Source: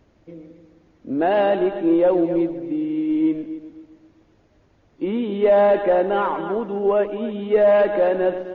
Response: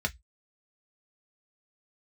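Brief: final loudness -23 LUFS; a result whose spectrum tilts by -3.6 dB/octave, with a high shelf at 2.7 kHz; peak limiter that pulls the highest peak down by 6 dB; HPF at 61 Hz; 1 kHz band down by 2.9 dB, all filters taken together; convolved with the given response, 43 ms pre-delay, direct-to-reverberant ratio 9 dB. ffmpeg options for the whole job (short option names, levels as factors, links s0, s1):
-filter_complex "[0:a]highpass=61,equalizer=f=1000:t=o:g=-4.5,highshelf=f=2700:g=3.5,alimiter=limit=0.211:level=0:latency=1,asplit=2[s0][s1];[1:a]atrim=start_sample=2205,adelay=43[s2];[s1][s2]afir=irnorm=-1:irlink=0,volume=0.168[s3];[s0][s3]amix=inputs=2:normalize=0,volume=0.841"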